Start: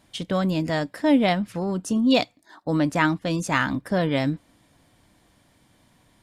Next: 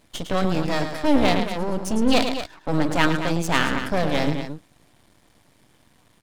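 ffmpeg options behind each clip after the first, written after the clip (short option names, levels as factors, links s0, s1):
-af "aecho=1:1:107.9|227.4:0.398|0.316,aeval=exprs='max(val(0),0)':c=same,volume=1.68"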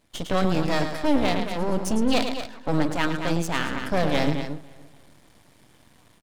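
-filter_complex "[0:a]dynaudnorm=f=110:g=3:m=2.82,asplit=2[s0][s1];[s1]adelay=282,lowpass=f=3800:p=1,volume=0.0891,asplit=2[s2][s3];[s3]adelay=282,lowpass=f=3800:p=1,volume=0.37,asplit=2[s4][s5];[s5]adelay=282,lowpass=f=3800:p=1,volume=0.37[s6];[s0][s2][s4][s6]amix=inputs=4:normalize=0,volume=0.447"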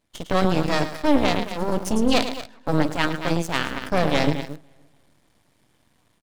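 -filter_complex "[0:a]aeval=exprs='0.422*(cos(1*acos(clip(val(0)/0.422,-1,1)))-cos(1*PI/2))+0.0422*(cos(3*acos(clip(val(0)/0.422,-1,1)))-cos(3*PI/2))+0.0168*(cos(7*acos(clip(val(0)/0.422,-1,1)))-cos(7*PI/2))':c=same,asplit=2[s0][s1];[s1]aeval=exprs='val(0)*gte(abs(val(0)),0.0266)':c=same,volume=0.562[s2];[s0][s2]amix=inputs=2:normalize=0"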